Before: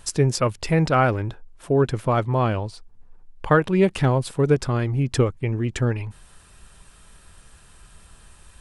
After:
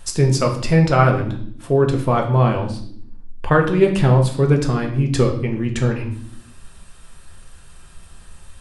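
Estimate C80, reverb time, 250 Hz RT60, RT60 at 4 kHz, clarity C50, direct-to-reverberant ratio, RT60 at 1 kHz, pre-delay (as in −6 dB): 12.5 dB, 0.65 s, 1.1 s, 0.55 s, 8.5 dB, 2.0 dB, 0.50 s, 4 ms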